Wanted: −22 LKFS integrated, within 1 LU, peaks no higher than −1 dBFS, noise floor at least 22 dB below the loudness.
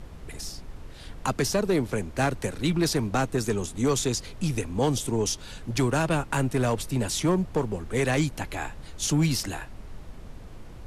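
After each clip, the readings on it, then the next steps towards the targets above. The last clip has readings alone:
share of clipped samples 0.9%; peaks flattened at −16.5 dBFS; background noise floor −43 dBFS; target noise floor −49 dBFS; integrated loudness −27.0 LKFS; sample peak −16.5 dBFS; target loudness −22.0 LKFS
→ clipped peaks rebuilt −16.5 dBFS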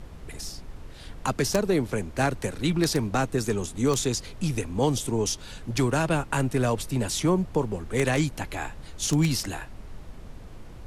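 share of clipped samples 0.0%; background noise floor −43 dBFS; target noise floor −49 dBFS
→ noise reduction from a noise print 6 dB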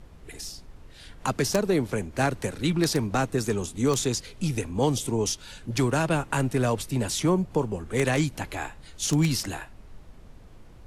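background noise floor −48 dBFS; target noise floor −49 dBFS
→ noise reduction from a noise print 6 dB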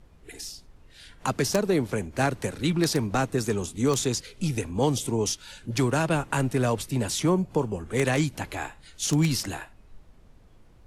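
background noise floor −54 dBFS; integrated loudness −26.5 LKFS; sample peak −7.5 dBFS; target loudness −22.0 LKFS
→ level +4.5 dB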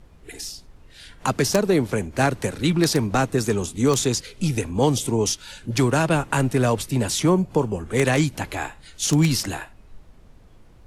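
integrated loudness −22.0 LKFS; sample peak −3.0 dBFS; background noise floor −49 dBFS

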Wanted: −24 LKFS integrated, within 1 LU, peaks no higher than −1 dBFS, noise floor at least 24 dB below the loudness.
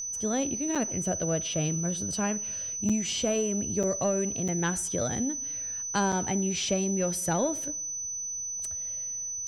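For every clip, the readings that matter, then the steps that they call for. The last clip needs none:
number of dropouts 5; longest dropout 5.8 ms; interfering tone 6,000 Hz; level of the tone −32 dBFS; integrated loudness −28.5 LKFS; sample peak −13.5 dBFS; target loudness −24.0 LKFS
→ repair the gap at 0:00.75/0:02.89/0:03.83/0:04.48/0:06.12, 5.8 ms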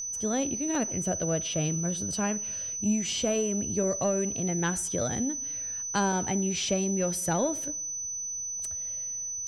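number of dropouts 0; interfering tone 6,000 Hz; level of the tone −32 dBFS
→ notch filter 6,000 Hz, Q 30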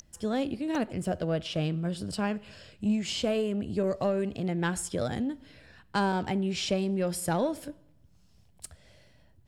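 interfering tone none found; integrated loudness −30.5 LKFS; sample peak −15.0 dBFS; target loudness −24.0 LKFS
→ level +6.5 dB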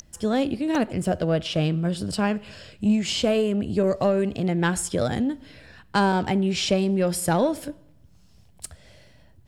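integrated loudness −24.0 LKFS; sample peak −8.5 dBFS; background noise floor −54 dBFS

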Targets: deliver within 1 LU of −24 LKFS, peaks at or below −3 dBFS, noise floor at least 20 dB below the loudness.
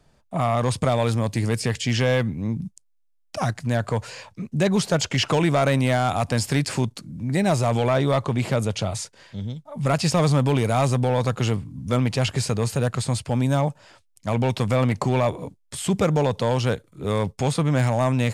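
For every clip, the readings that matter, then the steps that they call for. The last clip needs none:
share of clipped samples 0.9%; peaks flattened at −13.0 dBFS; integrated loudness −23.0 LKFS; sample peak −13.0 dBFS; target loudness −24.0 LKFS
→ clipped peaks rebuilt −13 dBFS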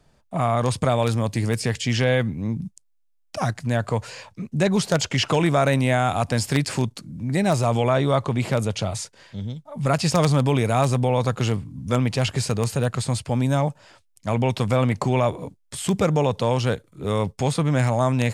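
share of clipped samples 0.0%; integrated loudness −22.5 LKFS; sample peak −4.0 dBFS; target loudness −24.0 LKFS
→ level −1.5 dB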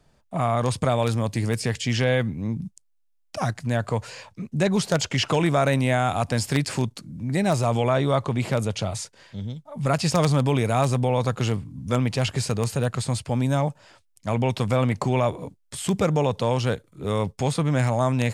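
integrated loudness −24.0 LKFS; sample peak −5.5 dBFS; background noise floor −65 dBFS

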